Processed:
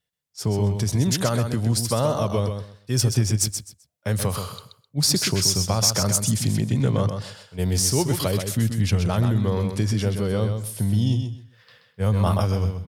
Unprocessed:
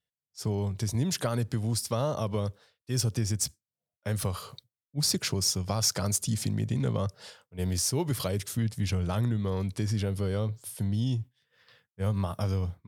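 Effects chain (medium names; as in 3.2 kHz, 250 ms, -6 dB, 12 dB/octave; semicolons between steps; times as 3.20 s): on a send: feedback delay 129 ms, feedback 21%, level -7 dB; 12.02–12.45 s: on the sum: decay stretcher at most 22 dB/s; trim +6.5 dB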